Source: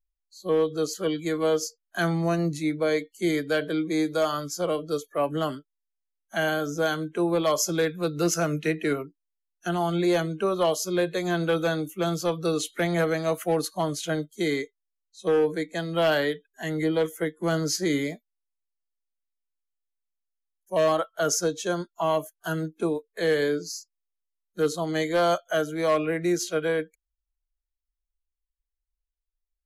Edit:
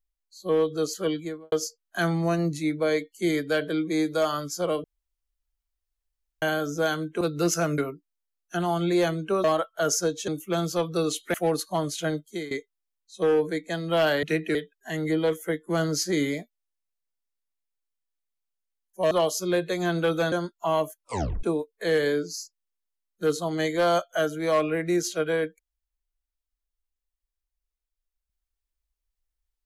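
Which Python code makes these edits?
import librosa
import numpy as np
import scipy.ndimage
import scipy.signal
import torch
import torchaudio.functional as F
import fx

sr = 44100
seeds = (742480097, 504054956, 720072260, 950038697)

y = fx.studio_fade_out(x, sr, start_s=1.09, length_s=0.43)
y = fx.edit(y, sr, fx.room_tone_fill(start_s=4.84, length_s=1.58),
    fx.cut(start_s=7.21, length_s=0.8),
    fx.move(start_s=8.58, length_s=0.32, to_s=16.28),
    fx.swap(start_s=10.56, length_s=1.21, other_s=20.84, other_length_s=0.84),
    fx.cut(start_s=12.83, length_s=0.56),
    fx.fade_out_to(start_s=14.27, length_s=0.29, floor_db=-18.0),
    fx.tape_stop(start_s=22.35, length_s=0.44), tone=tone)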